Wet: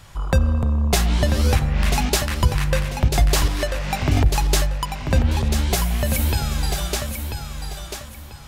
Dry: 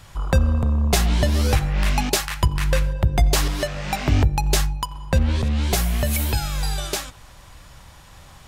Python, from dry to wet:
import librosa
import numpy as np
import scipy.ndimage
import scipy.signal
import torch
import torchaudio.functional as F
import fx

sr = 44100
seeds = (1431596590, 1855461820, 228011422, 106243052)

y = fx.echo_feedback(x, sr, ms=991, feedback_pct=27, wet_db=-7)